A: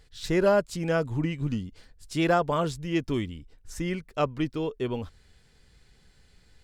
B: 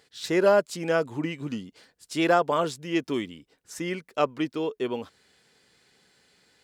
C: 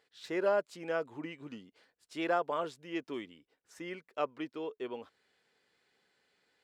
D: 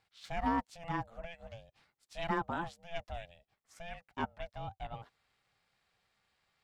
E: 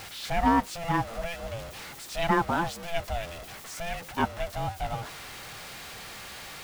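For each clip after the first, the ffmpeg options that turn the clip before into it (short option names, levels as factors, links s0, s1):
-af "highpass=260,volume=1.33"
-af "bass=f=250:g=-9,treble=f=4000:g=-9,volume=0.355"
-af "aeval=exprs='val(0)*sin(2*PI*340*n/s)':c=same"
-af "aeval=exprs='val(0)+0.5*0.00562*sgn(val(0))':c=same,volume=2.82"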